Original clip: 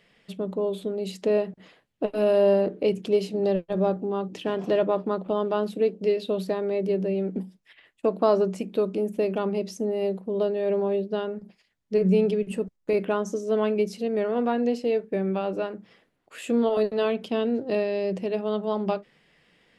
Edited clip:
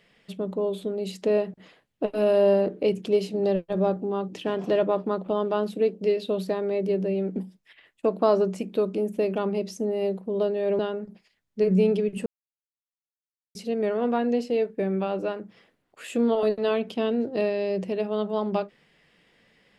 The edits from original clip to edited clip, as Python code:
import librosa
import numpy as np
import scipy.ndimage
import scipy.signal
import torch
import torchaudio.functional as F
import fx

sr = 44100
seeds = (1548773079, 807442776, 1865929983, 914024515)

y = fx.edit(x, sr, fx.cut(start_s=10.79, length_s=0.34),
    fx.silence(start_s=12.6, length_s=1.29), tone=tone)